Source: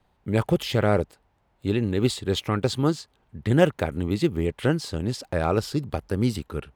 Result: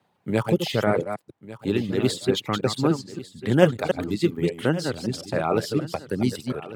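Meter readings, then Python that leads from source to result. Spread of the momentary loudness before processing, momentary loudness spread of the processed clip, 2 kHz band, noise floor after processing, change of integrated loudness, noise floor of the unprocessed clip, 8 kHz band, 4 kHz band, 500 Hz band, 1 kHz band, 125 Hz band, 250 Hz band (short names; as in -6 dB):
8 LU, 11 LU, +1.5 dB, -69 dBFS, +0.5 dB, -67 dBFS, +1.0 dB, +1.5 dB, +1.5 dB, +1.0 dB, -2.0 dB, +1.0 dB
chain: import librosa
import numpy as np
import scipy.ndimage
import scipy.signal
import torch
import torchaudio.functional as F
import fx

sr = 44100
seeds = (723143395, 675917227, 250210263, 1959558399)

p1 = fx.reverse_delay(x, sr, ms=145, wet_db=-4.0)
p2 = fx.dereverb_blind(p1, sr, rt60_s=1.2)
p3 = scipy.signal.sosfilt(scipy.signal.butter(4, 120.0, 'highpass', fs=sr, output='sos'), p2)
p4 = p3 + fx.echo_single(p3, sr, ms=1148, db=-16.5, dry=0)
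y = p4 * 10.0 ** (1.0 / 20.0)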